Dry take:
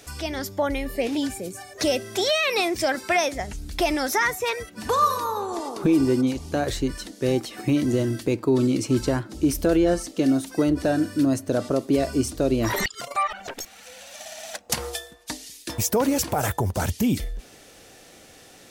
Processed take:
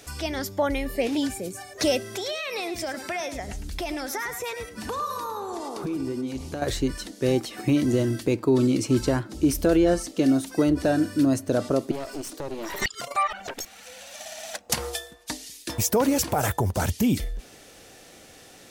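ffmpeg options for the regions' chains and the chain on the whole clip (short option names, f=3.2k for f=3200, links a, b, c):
-filter_complex "[0:a]asettb=1/sr,asplit=3[a][b][c];[a]atrim=end=2.034[d];[b]atrim=start=2.03:end=6.62,asetpts=PTS-STARTPTS,afade=t=in:d=0.004:c=qsin,afade=t=out:st=4.586:d=0.004:c=qsin,acompressor=threshold=-30dB:ratio=3:attack=3.2:release=140:knee=1:detection=peak,aecho=1:1:107:0.299,atrim=end_sample=202419[e];[c]atrim=start=6.616[f];[d][e]acrossfade=d=0.004:c1=hsin:c2=qsin[g];[g][f]acrossfade=d=0.004:c1=qsin:c2=hsin,asettb=1/sr,asplit=3[h][i][j];[h]atrim=end=11.914[k];[i]atrim=start=11.91:end=12.82,asetpts=PTS-STARTPTS,afade=t=in:d=0.004:c=qsin,afade=t=out:st=0.906:d=0.004:c=qsin,highpass=f=280:w=0.5412,highpass=f=280:w=1.3066,acompressor=threshold=-31dB:ratio=2:attack=3.2:release=140:knee=1:detection=peak,aeval=exprs='clip(val(0),-1,0.0112)':c=same[l];[j]atrim=start=12.816[m];[k][l]acrossfade=d=0.004:c1=hsin:c2=qsin[n];[n][m]acrossfade=d=0.004:c1=qsin:c2=hsin"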